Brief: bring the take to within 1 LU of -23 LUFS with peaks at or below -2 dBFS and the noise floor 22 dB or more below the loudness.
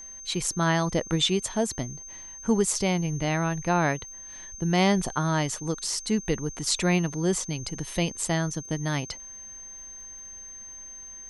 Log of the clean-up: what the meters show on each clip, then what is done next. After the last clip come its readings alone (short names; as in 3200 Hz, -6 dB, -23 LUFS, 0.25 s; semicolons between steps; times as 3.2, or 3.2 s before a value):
ticks 33/s; steady tone 6300 Hz; tone level -40 dBFS; loudness -26.5 LUFS; peak -7.5 dBFS; loudness target -23.0 LUFS
-> de-click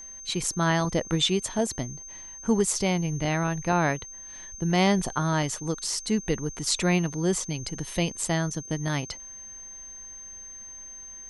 ticks 0/s; steady tone 6300 Hz; tone level -40 dBFS
-> notch 6300 Hz, Q 30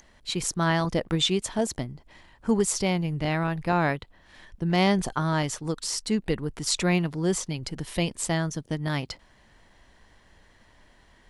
steady tone none; loudness -27.0 LUFS; peak -7.5 dBFS; loudness target -23.0 LUFS
-> gain +4 dB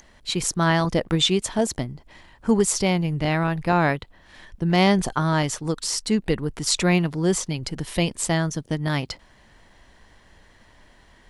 loudness -23.0 LUFS; peak -3.5 dBFS; noise floor -55 dBFS